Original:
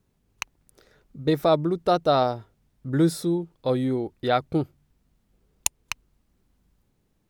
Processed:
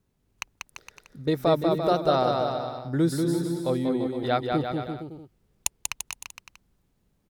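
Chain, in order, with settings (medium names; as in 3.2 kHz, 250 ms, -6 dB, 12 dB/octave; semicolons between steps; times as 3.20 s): bouncing-ball echo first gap 190 ms, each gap 0.8×, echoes 5; trim -3 dB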